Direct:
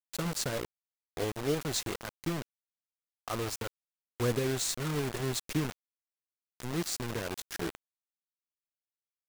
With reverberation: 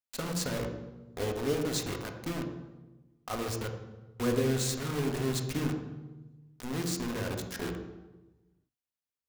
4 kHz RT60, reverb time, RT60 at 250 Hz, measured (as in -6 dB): 0.80 s, 1.1 s, 1.5 s